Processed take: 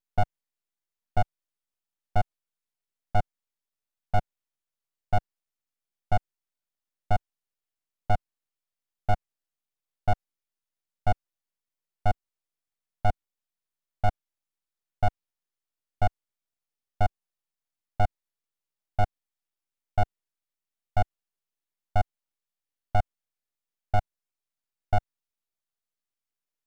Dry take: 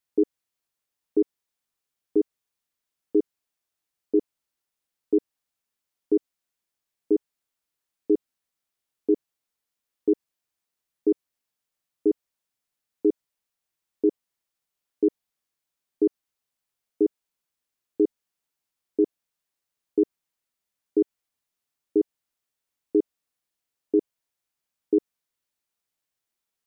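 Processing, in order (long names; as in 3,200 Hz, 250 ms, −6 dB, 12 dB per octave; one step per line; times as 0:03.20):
spectral tilt −1.5 dB per octave
full-wave rectification
level −2 dB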